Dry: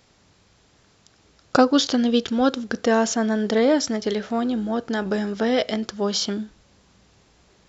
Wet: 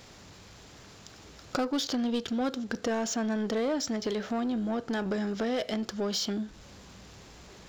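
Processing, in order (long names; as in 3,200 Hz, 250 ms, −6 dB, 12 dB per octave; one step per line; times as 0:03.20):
leveller curve on the samples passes 1
downward compressor 2.5 to 1, threshold −34 dBFS, peak gain reduction 16.5 dB
power curve on the samples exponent 0.7
level −4.5 dB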